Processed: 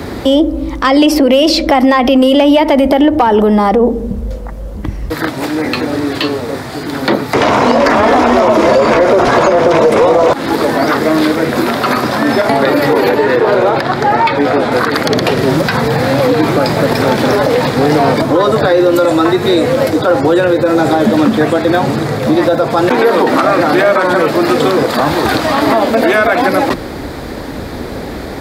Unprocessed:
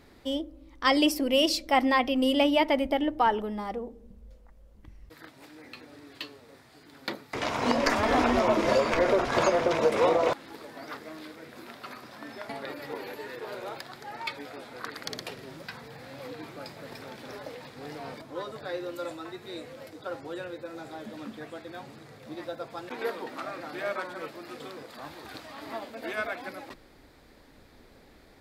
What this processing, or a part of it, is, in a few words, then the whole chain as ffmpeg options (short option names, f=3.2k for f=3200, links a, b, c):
mastering chain: -filter_complex "[0:a]highpass=52,equalizer=f=2.5k:t=o:w=0.77:g=-2.5,acrossover=split=140|320|4400[a][b][c][d];[a]acompressor=threshold=-51dB:ratio=4[e];[b]acompressor=threshold=-41dB:ratio=4[f];[c]acompressor=threshold=-27dB:ratio=4[g];[d]acompressor=threshold=-49dB:ratio=4[h];[e][f][g][h]amix=inputs=4:normalize=0,acompressor=threshold=-40dB:ratio=1.5,asoftclip=type=tanh:threshold=-23dB,tiltshelf=f=1.4k:g=3,asoftclip=type=hard:threshold=-25.5dB,alimiter=level_in=32.5dB:limit=-1dB:release=50:level=0:latency=1,asettb=1/sr,asplit=3[i][j][k];[i]atrim=end=13.094[l];[j]atrim=start=13.09:end=14.72,asetpts=PTS-STARTPTS,afade=t=in:d=0.004:c=qsin,afade=t=out:st=1.626:d=0.004:c=qsin,aemphasis=mode=reproduction:type=50kf[m];[k]atrim=start=14.716[n];[l][m]acrossfade=d=0.004:c1=hsin:c2=qsin[o];[o][n]acrossfade=d=0.004:c1=qsin:c2=hsin,volume=-1dB"